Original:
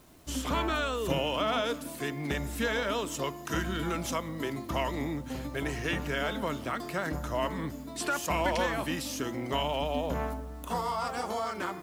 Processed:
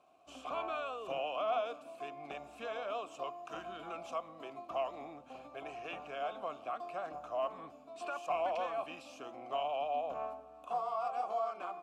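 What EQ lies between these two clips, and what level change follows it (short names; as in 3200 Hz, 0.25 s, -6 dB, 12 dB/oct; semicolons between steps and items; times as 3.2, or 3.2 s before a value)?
vowel filter a; bell 7800 Hz +4.5 dB 0.73 oct; +3.0 dB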